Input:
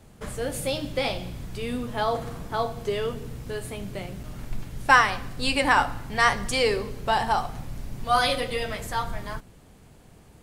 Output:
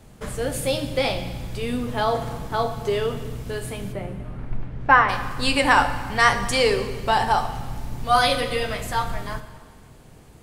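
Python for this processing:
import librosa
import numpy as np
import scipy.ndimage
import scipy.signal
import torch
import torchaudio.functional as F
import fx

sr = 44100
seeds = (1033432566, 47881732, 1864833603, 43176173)

y = fx.lowpass(x, sr, hz=1800.0, slope=12, at=(3.92, 5.08), fade=0.02)
y = fx.rev_plate(y, sr, seeds[0], rt60_s=1.7, hf_ratio=0.95, predelay_ms=0, drr_db=10.0)
y = y * librosa.db_to_amplitude(3.0)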